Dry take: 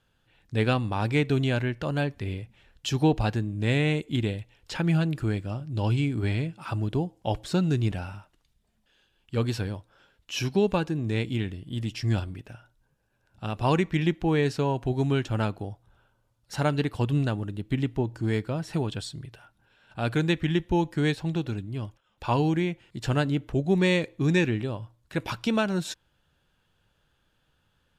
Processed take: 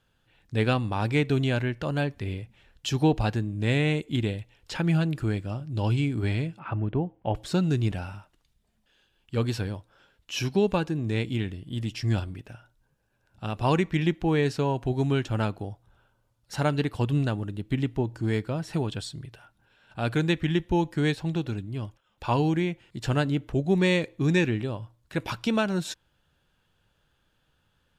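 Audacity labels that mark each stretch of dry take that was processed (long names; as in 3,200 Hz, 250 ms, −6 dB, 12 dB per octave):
6.590000	7.350000	low-pass filter 2,500 Hz 24 dB per octave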